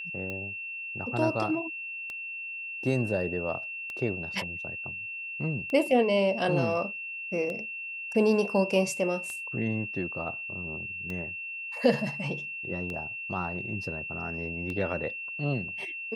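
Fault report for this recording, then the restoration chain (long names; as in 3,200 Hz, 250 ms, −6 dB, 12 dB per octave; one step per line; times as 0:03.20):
scratch tick 33 1/3 rpm −23 dBFS
whistle 2,700 Hz −35 dBFS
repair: click removal
notch filter 2,700 Hz, Q 30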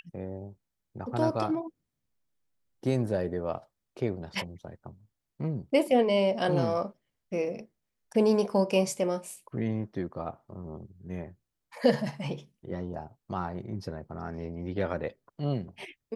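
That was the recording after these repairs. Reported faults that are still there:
none of them is left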